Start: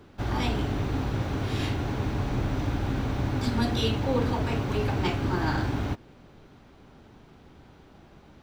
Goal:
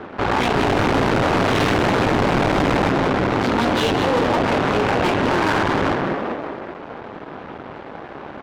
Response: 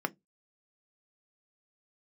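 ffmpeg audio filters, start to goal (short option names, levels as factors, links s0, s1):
-filter_complex "[0:a]asettb=1/sr,asplit=3[s0][s1][s2];[s0]atrim=end=0.564[s3];[s1]atrim=start=0.56:end=2.9,asetpts=PTS-STARTPTS,afade=t=in:d=0.004:c=qsin,afade=t=out:st=2.336:d=0.004:c=qsin,acontrast=78[s4];[s2]atrim=start=2.896[s5];[s3][s4]acrossfade=d=0.004:c1=hsin:c2=qsin[s6];[s6][s5]acrossfade=d=0.004:c1=qsin:c2=hsin,asplit=7[s7][s8][s9][s10][s11][s12][s13];[s8]adelay=194,afreqshift=69,volume=0.398[s14];[s9]adelay=388,afreqshift=138,volume=0.191[s15];[s10]adelay=582,afreqshift=207,volume=0.0912[s16];[s11]adelay=776,afreqshift=276,volume=0.0442[s17];[s12]adelay=970,afreqshift=345,volume=0.0211[s18];[s13]adelay=1164,afreqshift=414,volume=0.0101[s19];[s7][s14][s15][s16][s17][s18][s19]amix=inputs=7:normalize=0,adynamicsmooth=sensitivity=7.5:basefreq=3700,aeval=exprs='max(val(0),0)':c=same,highshelf=f=2700:g=-10,asplit=2[s20][s21];[s21]highpass=f=720:p=1,volume=63.1,asoftclip=type=tanh:threshold=0.355[s22];[s20][s22]amix=inputs=2:normalize=0,lowpass=f=2800:p=1,volume=0.501"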